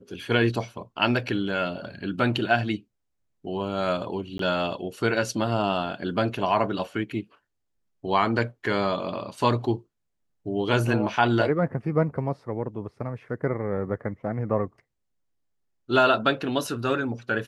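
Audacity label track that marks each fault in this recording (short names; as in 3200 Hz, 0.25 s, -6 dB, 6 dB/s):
4.380000	4.390000	gap 13 ms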